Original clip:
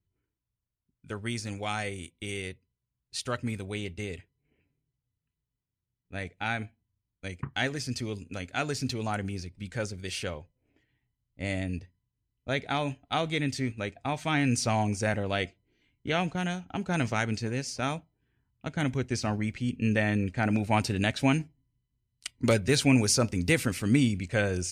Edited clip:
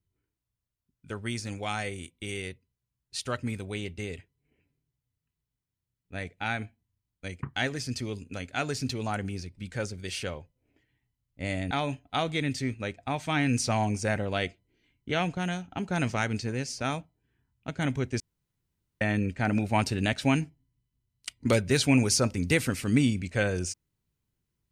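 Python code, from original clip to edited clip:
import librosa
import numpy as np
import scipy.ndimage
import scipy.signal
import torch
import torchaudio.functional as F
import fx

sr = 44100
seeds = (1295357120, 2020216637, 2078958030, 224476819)

y = fx.edit(x, sr, fx.cut(start_s=11.71, length_s=0.98),
    fx.room_tone_fill(start_s=19.18, length_s=0.81), tone=tone)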